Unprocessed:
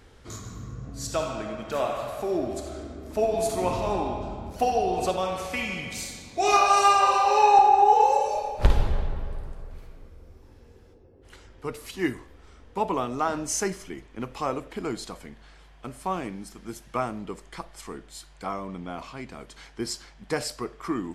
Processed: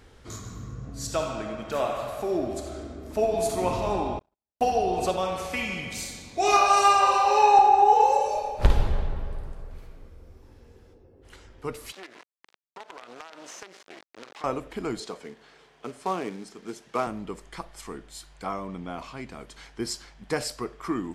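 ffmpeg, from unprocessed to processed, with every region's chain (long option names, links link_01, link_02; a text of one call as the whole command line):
ffmpeg -i in.wav -filter_complex "[0:a]asettb=1/sr,asplit=3[link_01][link_02][link_03];[link_01]atrim=end=4.194[link_04];[link_02]atrim=start=4.19:end=4.61,asetpts=PTS-STARTPTS,afade=type=in:duration=0.004:curve=qsin,afade=type=out:start_time=0.416:duration=0.004:curve=qsin,agate=range=-59dB:threshold=-29dB:ratio=16:release=100:detection=peak,lowshelf=frequency=330:gain=-8[link_05];[link_03]atrim=start=4.606[link_06];[link_04][link_05]acrossfade=duration=0.004:curve1=hsin:curve2=qsin[link_07];[link_07][link_06]acrossfade=duration=0.004:curve1=qsin:curve2=hsin,asettb=1/sr,asplit=3[link_08][link_09][link_10];[link_08]atrim=end=11.924[link_11];[link_09]atrim=start=11.92:end=14.44,asetpts=PTS-STARTPTS,afade=type=in:duration=0.004:curve=qsin,afade=type=out:start_time=2.516:duration=0.004:curve=qsin,acrusher=bits=4:dc=4:mix=0:aa=0.000001,highpass=430,lowpass=5000,acompressor=threshold=-38dB:ratio=16:attack=3.2:release=140:knee=1:detection=peak[link_12];[link_10]atrim=start=14.436[link_13];[link_11][link_12]acrossfade=duration=0.004:curve1=hsin:curve2=qsin[link_14];[link_14][link_13]acrossfade=duration=0.004:curve1=qsin:curve2=hsin,asettb=1/sr,asplit=3[link_15][link_16][link_17];[link_15]atrim=end=15.004[link_18];[link_16]atrim=start=15:end=17.07,asetpts=PTS-STARTPTS,afade=type=in:duration=0.004:curve=qsin,afade=type=out:start_time=2.066:duration=0.004:curve=qsin,equalizer=frequency=430:width=7.8:gain=12,acrusher=bits=4:mode=log:mix=0:aa=0.000001,highpass=180,lowpass=7200[link_19];[link_17]atrim=start=17.066[link_20];[link_18][link_19]acrossfade=duration=0.004:curve1=hsin:curve2=qsin[link_21];[link_21][link_20]acrossfade=duration=0.004:curve1=qsin:curve2=hsin" out.wav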